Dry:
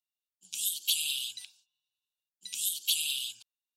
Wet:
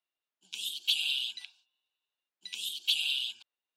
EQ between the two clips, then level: three-band isolator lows -21 dB, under 230 Hz, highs -21 dB, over 3.7 kHz; +6.5 dB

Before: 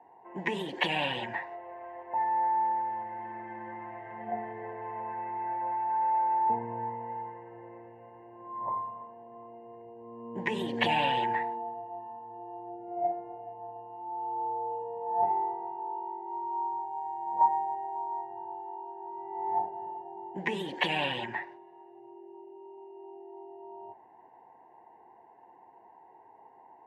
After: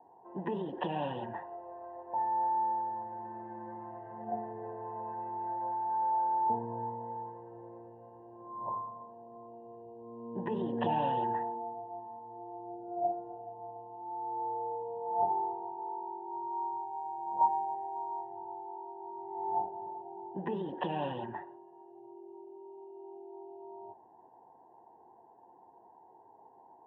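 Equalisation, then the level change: boxcar filter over 20 samples; distance through air 140 m; 0.0 dB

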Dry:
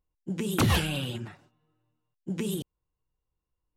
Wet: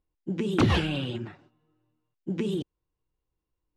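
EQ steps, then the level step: low-pass 4.3 kHz 12 dB/octave; peaking EQ 330 Hz +6 dB 0.82 oct; 0.0 dB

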